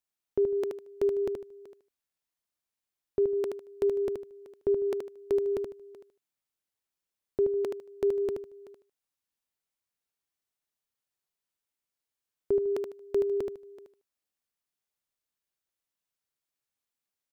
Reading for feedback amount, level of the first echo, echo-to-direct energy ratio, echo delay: 23%, −5.0 dB, −5.0 dB, 76 ms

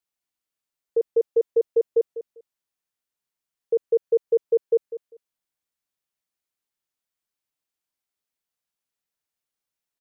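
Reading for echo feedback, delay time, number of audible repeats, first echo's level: 21%, 198 ms, 2, −13.5 dB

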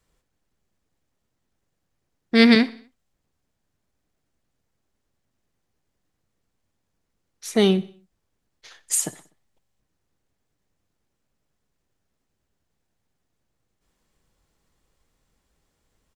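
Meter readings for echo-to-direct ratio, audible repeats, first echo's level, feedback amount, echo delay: −18.5 dB, 3, −20.0 dB, 52%, 62 ms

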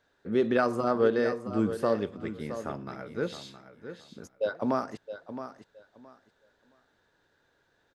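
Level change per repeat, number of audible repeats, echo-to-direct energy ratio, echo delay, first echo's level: −14.0 dB, 2, −11.0 dB, 668 ms, −11.0 dB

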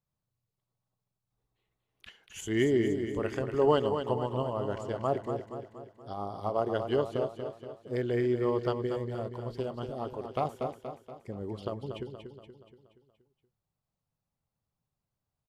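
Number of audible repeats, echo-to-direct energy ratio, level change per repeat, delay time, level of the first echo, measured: 5, −6.0 dB, −6.0 dB, 237 ms, −7.5 dB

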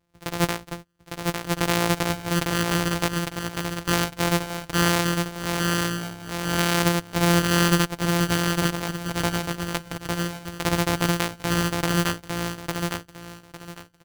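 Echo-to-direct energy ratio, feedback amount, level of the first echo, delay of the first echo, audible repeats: −3.0 dB, 24%, −3.5 dB, 854 ms, 3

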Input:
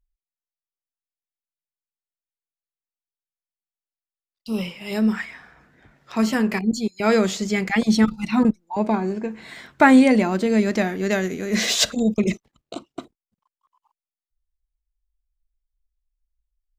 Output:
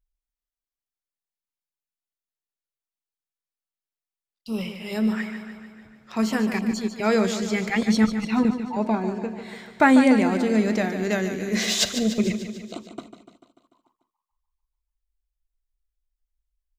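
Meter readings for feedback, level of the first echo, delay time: 60%, −10.0 dB, 147 ms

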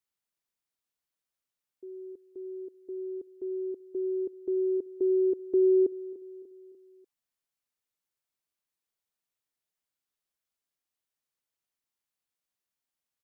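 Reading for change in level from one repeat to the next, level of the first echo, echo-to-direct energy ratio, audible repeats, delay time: −6.0 dB, −17.5 dB, −16.5 dB, 3, 295 ms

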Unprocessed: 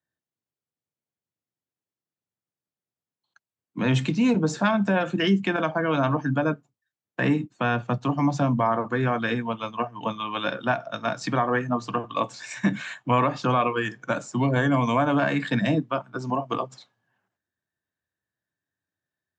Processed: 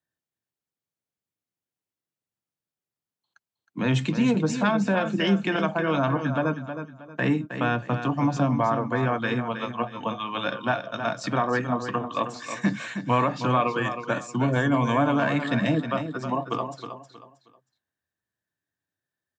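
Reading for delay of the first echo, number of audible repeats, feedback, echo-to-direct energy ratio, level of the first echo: 316 ms, 3, 30%, −8.5 dB, −9.0 dB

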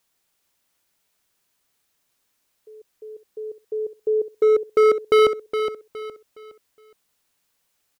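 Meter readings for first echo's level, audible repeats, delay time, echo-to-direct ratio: −9.0 dB, 3, 415 ms, −8.5 dB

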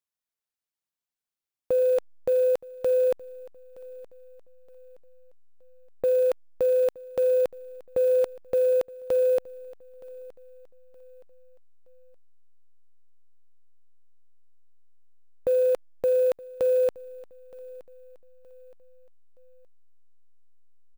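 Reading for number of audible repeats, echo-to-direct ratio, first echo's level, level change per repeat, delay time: 2, −20.5 dB, −21.0 dB, −8.5 dB, 920 ms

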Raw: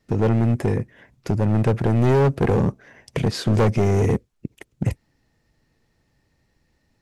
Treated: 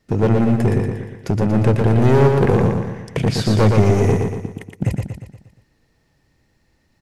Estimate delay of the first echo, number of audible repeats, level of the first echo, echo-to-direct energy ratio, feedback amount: 118 ms, 6, −4.0 dB, −3.0 dB, 49%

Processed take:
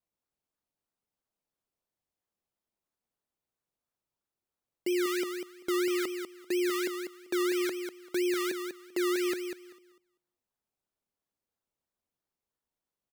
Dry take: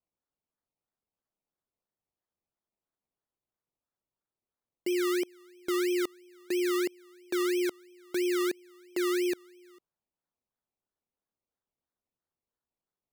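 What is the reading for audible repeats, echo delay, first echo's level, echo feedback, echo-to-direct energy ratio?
2, 195 ms, −7.0 dB, 16%, −7.0 dB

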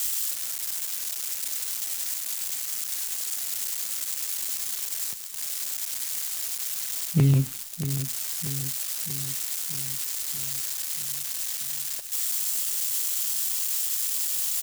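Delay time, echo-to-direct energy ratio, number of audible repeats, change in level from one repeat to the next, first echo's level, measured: 635 ms, −8.5 dB, 6, −4.5 dB, −10.5 dB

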